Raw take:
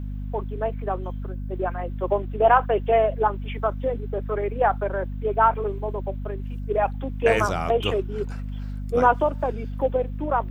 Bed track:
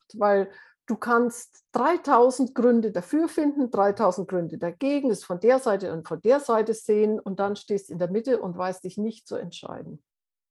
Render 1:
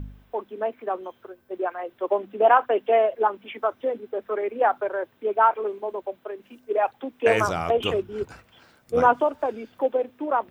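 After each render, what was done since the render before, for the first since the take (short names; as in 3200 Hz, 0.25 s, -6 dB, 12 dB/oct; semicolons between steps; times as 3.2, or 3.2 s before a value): de-hum 50 Hz, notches 5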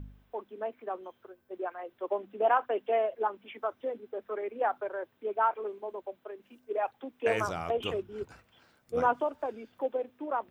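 gain -8.5 dB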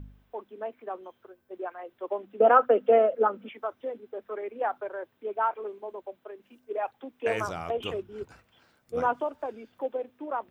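2.4–3.49 small resonant body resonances 230/490/1300 Hz, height 15 dB, ringing for 30 ms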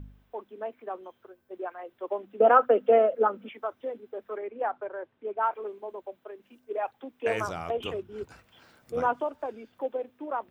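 4.38–5.43 air absorption 220 m; 7.86–8.96 three-band squash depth 40%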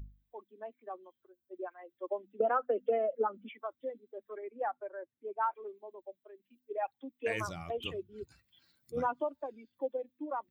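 per-bin expansion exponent 1.5; compressor 6:1, threshold -27 dBFS, peak gain reduction 12 dB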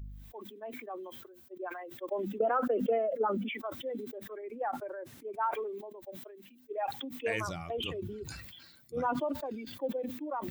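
sustainer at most 37 dB/s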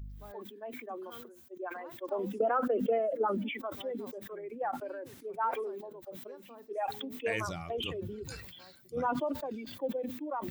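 add bed track -30.5 dB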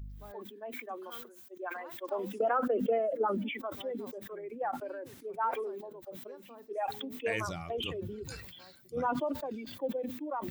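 0.72–2.53 tilt shelf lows -4.5 dB, about 640 Hz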